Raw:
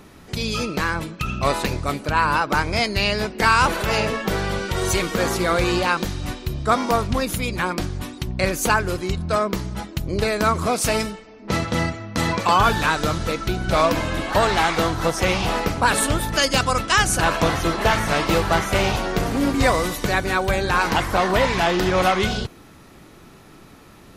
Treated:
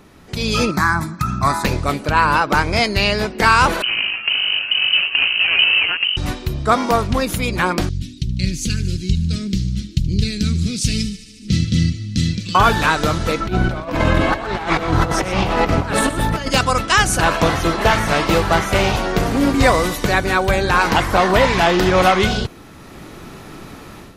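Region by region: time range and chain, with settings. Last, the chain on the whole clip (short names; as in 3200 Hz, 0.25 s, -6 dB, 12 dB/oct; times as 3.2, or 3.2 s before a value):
0.71–1.65 HPF 75 Hz + fixed phaser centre 1200 Hz, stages 4
3.82–6.17 median filter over 41 samples + inverted band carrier 3000 Hz
7.89–12.55 Chebyshev band-stop 170–4300 Hz + air absorption 71 m + thin delay 75 ms, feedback 80%, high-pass 1900 Hz, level -17 dB
13.4–16.5 high shelf 4000 Hz -10.5 dB + negative-ratio compressor -25 dBFS, ratio -0.5 + echo 0.121 s -11.5 dB
whole clip: bell 14000 Hz -2.5 dB 1.6 oct; AGC; gain -1 dB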